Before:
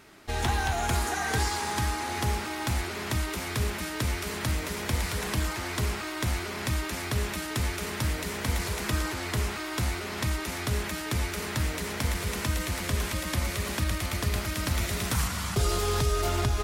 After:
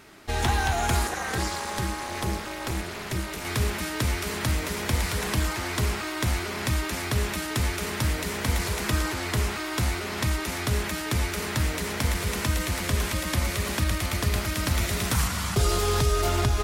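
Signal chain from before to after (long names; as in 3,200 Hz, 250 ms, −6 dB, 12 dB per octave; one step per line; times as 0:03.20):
0:01.07–0:03.45: amplitude modulation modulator 260 Hz, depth 85%
level +3 dB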